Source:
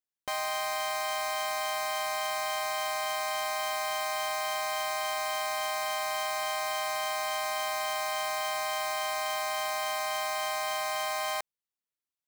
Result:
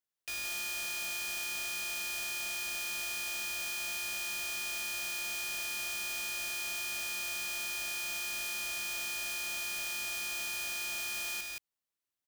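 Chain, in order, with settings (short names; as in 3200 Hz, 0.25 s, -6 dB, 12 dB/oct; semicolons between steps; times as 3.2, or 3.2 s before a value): wrapped overs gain 33 dB; echo 0.173 s -3.5 dB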